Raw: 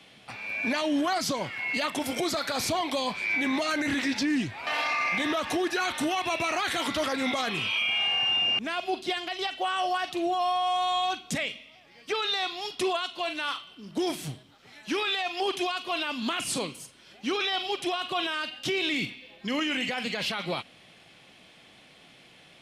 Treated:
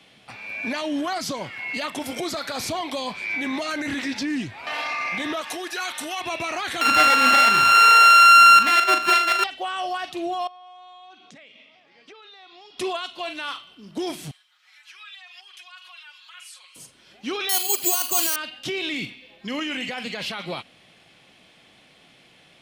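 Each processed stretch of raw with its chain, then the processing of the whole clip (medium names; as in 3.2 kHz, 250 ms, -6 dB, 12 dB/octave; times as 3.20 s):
5.41–6.21 s: high-pass 730 Hz 6 dB/octave + treble shelf 7 kHz +7.5 dB
6.81–9.44 s: sorted samples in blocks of 32 samples + peaking EQ 2.1 kHz +14.5 dB 2.8 oct + flutter echo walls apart 6.6 m, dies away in 0.27 s
10.47–12.78 s: high-pass 200 Hz + compression 12:1, threshold -42 dBFS + distance through air 100 m
14.31–16.76 s: compression, threshold -37 dBFS + ladder high-pass 1.1 kHz, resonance 25% + comb 5.5 ms, depth 97%
17.49–18.36 s: high-pass 110 Hz 24 dB/octave + careless resampling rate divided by 6×, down filtered, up zero stuff
whole clip: none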